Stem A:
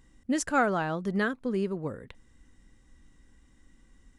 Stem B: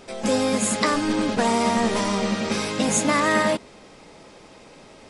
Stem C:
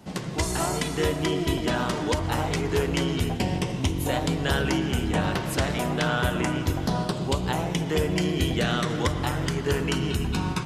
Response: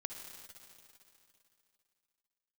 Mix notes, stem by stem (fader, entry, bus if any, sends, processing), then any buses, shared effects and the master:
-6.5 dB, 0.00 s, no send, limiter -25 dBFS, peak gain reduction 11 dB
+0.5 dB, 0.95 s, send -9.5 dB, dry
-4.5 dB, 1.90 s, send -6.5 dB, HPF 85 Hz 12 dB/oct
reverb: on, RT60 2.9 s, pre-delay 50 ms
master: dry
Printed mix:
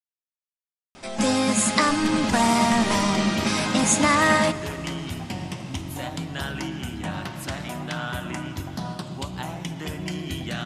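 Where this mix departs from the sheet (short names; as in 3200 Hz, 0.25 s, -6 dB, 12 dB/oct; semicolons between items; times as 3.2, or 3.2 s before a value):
stem A: muted; stem C: send off; master: extra bell 450 Hz -12 dB 0.43 oct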